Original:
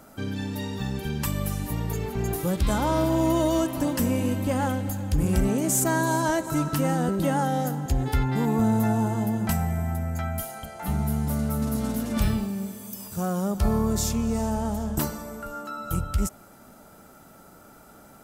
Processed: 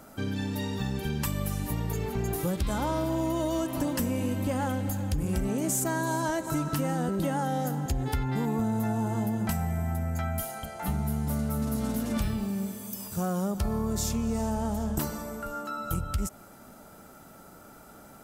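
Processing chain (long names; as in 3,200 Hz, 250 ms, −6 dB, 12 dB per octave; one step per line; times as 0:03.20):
downward compressor, threshold −25 dBFS, peak gain reduction 8 dB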